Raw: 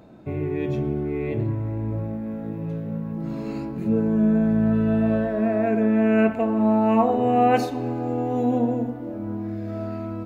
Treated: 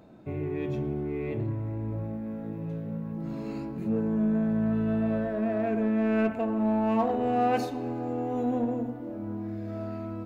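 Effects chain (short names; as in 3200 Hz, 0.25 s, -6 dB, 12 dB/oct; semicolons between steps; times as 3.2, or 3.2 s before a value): notches 60/120 Hz; in parallel at -4.5 dB: soft clip -23.5 dBFS, distortion -8 dB; on the sum: gain -8.5 dB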